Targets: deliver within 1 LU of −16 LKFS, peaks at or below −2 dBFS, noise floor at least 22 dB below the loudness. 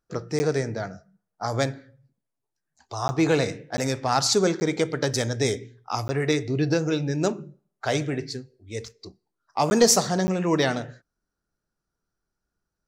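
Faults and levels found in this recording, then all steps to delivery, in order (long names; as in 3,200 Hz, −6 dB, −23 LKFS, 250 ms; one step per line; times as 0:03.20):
number of dropouts 7; longest dropout 10 ms; integrated loudness −24.5 LKFS; sample peak −7.0 dBFS; target loudness −16.0 LKFS
→ repair the gap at 0:00.39/0:03.08/0:03.77/0:04.60/0:06.08/0:09.70/0:10.27, 10 ms
level +8.5 dB
brickwall limiter −2 dBFS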